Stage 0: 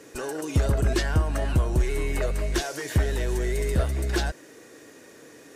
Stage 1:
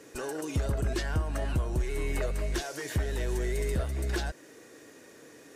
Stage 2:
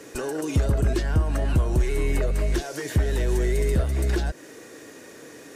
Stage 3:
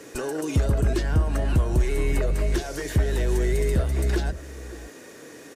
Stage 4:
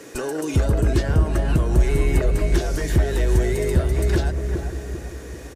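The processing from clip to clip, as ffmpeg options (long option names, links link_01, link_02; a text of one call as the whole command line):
ffmpeg -i in.wav -af "alimiter=limit=-17.5dB:level=0:latency=1:release=301,volume=-3.5dB" out.wav
ffmpeg -i in.wav -filter_complex "[0:a]acrossover=split=490[link_01][link_02];[link_02]acompressor=threshold=-41dB:ratio=6[link_03];[link_01][link_03]amix=inputs=2:normalize=0,volume=8dB" out.wav
ffmpeg -i in.wav -filter_complex "[0:a]asplit=2[link_01][link_02];[link_02]adelay=565.6,volume=-16dB,highshelf=frequency=4000:gain=-12.7[link_03];[link_01][link_03]amix=inputs=2:normalize=0" out.wav
ffmpeg -i in.wav -filter_complex "[0:a]asplit=2[link_01][link_02];[link_02]adelay=394,lowpass=frequency=980:poles=1,volume=-4.5dB,asplit=2[link_03][link_04];[link_04]adelay=394,lowpass=frequency=980:poles=1,volume=0.51,asplit=2[link_05][link_06];[link_06]adelay=394,lowpass=frequency=980:poles=1,volume=0.51,asplit=2[link_07][link_08];[link_08]adelay=394,lowpass=frequency=980:poles=1,volume=0.51,asplit=2[link_09][link_10];[link_10]adelay=394,lowpass=frequency=980:poles=1,volume=0.51,asplit=2[link_11][link_12];[link_12]adelay=394,lowpass=frequency=980:poles=1,volume=0.51,asplit=2[link_13][link_14];[link_14]adelay=394,lowpass=frequency=980:poles=1,volume=0.51[link_15];[link_01][link_03][link_05][link_07][link_09][link_11][link_13][link_15]amix=inputs=8:normalize=0,volume=2.5dB" out.wav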